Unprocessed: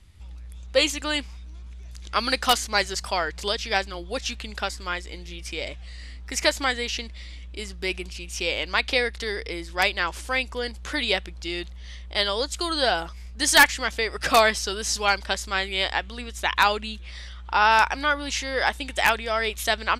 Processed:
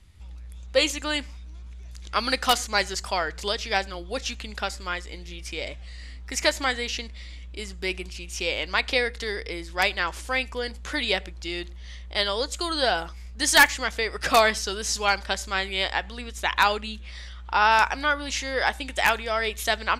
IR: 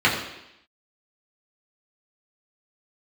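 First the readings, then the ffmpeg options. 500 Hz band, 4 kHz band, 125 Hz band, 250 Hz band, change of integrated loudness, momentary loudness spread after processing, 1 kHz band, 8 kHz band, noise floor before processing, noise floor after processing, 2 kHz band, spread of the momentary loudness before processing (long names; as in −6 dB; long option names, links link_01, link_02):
−0.5 dB, −1.5 dB, −0.5 dB, −1.0 dB, −1.0 dB, 19 LU, −1.0 dB, −1.0 dB, −40 dBFS, −40 dBFS, −0.5 dB, 19 LU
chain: -filter_complex "[0:a]asplit=2[link_01][link_02];[link_02]highshelf=frequency=5500:width_type=q:width=3:gain=9[link_03];[1:a]atrim=start_sample=2205,afade=type=out:start_time=0.18:duration=0.01,atrim=end_sample=8379[link_04];[link_03][link_04]afir=irnorm=-1:irlink=0,volume=-37dB[link_05];[link_01][link_05]amix=inputs=2:normalize=0,volume=-1dB"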